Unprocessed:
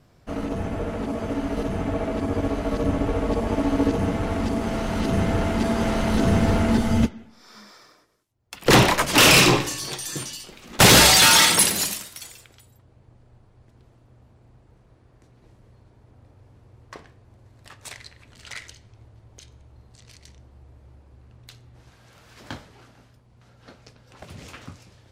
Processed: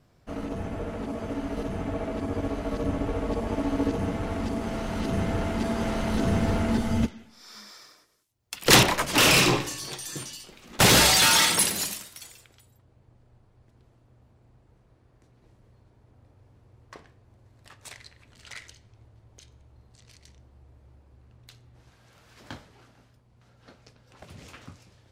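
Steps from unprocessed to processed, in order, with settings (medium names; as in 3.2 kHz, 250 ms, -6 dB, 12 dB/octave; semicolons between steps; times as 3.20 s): 7.08–8.83 s: treble shelf 2.2 kHz +10.5 dB; trim -5 dB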